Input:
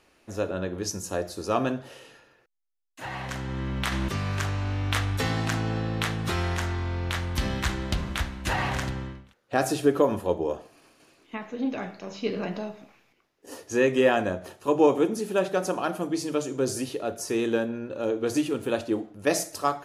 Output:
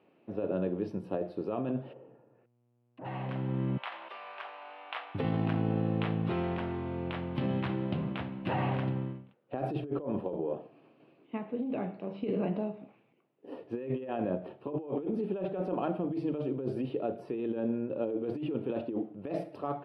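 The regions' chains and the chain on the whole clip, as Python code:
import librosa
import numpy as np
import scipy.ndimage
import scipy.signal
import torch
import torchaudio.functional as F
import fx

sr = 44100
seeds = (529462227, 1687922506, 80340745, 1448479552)

y = fx.env_lowpass_down(x, sr, base_hz=910.0, full_db=-50.0, at=(1.92, 3.04), fade=0.02)
y = fx.dmg_buzz(y, sr, base_hz=120.0, harmonics=34, level_db=-72.0, tilt_db=-7, odd_only=False, at=(1.92, 3.04), fade=0.02)
y = fx.chain(y, sr, fx.highpass(hz=700.0, slope=24),
    fx.high_shelf(hz=11000.0, db=-10.5), at=(3.77, 5.15))
y = scipy.signal.sosfilt(scipy.signal.ellip(3, 1.0, 40, [130.0, 2700.0], 'bandpass', fs=sr, output='sos'), y)
y = fx.peak_eq(y, sr, hz=1800.0, db=-14.5, octaves=1.9)
y = fx.over_compress(y, sr, threshold_db=-32.0, ratio=-1.0)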